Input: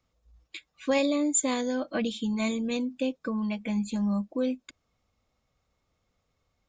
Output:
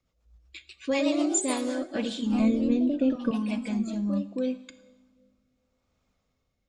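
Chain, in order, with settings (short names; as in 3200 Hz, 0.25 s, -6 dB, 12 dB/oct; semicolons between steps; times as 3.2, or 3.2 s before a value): 2.39–3.31 tilt -3.5 dB/oct; two-slope reverb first 1 s, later 3.2 s, from -19 dB, DRR 12 dB; echoes that change speed 0.206 s, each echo +2 st, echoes 3, each echo -6 dB; rotary speaker horn 8 Hz, later 0.75 Hz, at 1.18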